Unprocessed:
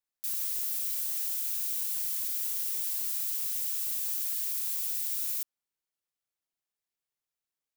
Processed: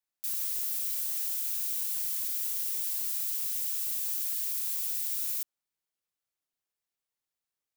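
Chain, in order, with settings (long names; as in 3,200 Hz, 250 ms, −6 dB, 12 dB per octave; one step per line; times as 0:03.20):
0:02.36–0:04.68: low-shelf EQ 430 Hz −9 dB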